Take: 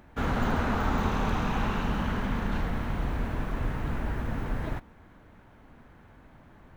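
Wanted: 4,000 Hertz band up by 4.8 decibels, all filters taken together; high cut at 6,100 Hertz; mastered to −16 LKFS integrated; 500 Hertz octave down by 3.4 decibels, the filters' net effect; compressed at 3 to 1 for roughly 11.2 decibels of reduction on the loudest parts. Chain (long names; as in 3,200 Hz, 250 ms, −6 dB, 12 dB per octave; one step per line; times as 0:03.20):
low-pass filter 6,100 Hz
parametric band 500 Hz −4.5 dB
parametric band 4,000 Hz +7 dB
downward compressor 3 to 1, threshold −38 dBFS
level +24.5 dB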